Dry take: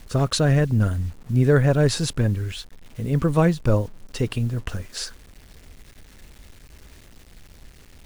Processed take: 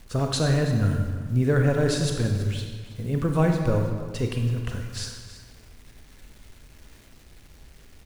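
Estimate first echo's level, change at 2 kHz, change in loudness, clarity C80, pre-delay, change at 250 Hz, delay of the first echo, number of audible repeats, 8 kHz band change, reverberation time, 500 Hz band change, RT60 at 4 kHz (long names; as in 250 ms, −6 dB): −15.0 dB, −2.5 dB, −3.0 dB, 5.5 dB, 30 ms, −2.5 dB, 327 ms, 1, −3.0 dB, 1.5 s, −3.0 dB, 1.2 s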